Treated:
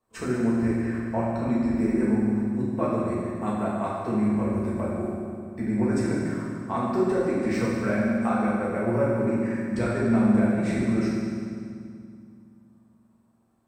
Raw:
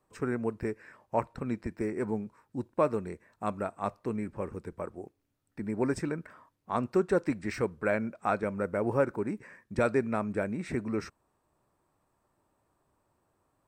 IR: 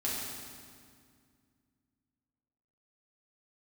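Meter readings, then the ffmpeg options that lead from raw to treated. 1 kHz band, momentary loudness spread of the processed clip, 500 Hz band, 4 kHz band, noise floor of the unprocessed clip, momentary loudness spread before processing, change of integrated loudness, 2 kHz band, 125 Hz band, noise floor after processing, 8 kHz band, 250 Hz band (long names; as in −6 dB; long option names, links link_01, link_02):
+3.5 dB, 8 LU, +3.5 dB, +6.0 dB, −77 dBFS, 12 LU, +7.0 dB, +4.0 dB, +9.0 dB, −61 dBFS, +6.5 dB, +11.0 dB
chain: -filter_complex "[0:a]agate=range=-12dB:threshold=-56dB:ratio=16:detection=peak,acompressor=threshold=-41dB:ratio=2.5[link_01];[1:a]atrim=start_sample=2205,asetrate=38367,aresample=44100[link_02];[link_01][link_02]afir=irnorm=-1:irlink=0,volume=7dB"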